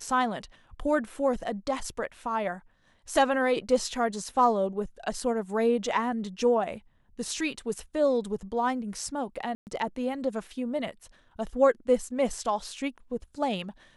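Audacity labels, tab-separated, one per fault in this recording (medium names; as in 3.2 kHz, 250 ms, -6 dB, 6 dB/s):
9.550000	9.670000	dropout 119 ms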